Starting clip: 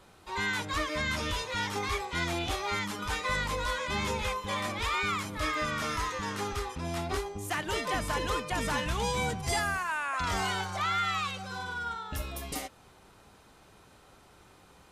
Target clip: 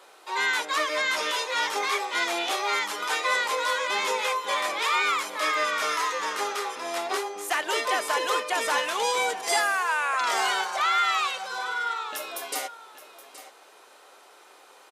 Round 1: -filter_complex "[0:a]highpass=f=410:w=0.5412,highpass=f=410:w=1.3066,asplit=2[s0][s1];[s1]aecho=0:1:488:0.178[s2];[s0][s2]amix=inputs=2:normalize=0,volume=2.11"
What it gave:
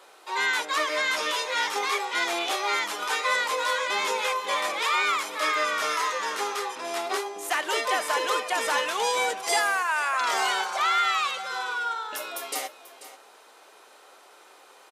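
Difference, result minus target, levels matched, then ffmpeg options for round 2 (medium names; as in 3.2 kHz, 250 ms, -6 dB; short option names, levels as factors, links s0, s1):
echo 334 ms early
-filter_complex "[0:a]highpass=f=410:w=0.5412,highpass=f=410:w=1.3066,asplit=2[s0][s1];[s1]aecho=0:1:822:0.178[s2];[s0][s2]amix=inputs=2:normalize=0,volume=2.11"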